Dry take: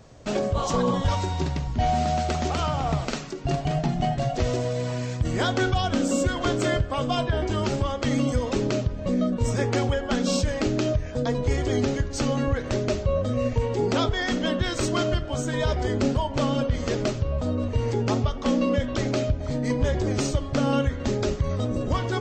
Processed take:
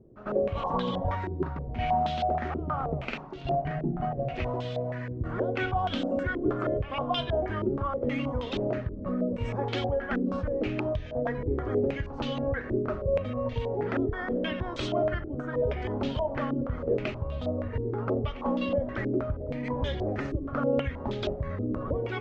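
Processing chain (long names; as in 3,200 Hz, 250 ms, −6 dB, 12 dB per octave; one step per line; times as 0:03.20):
echo ahead of the sound 97 ms −14 dB
low-pass on a step sequencer 6.3 Hz 360–3,400 Hz
level −8 dB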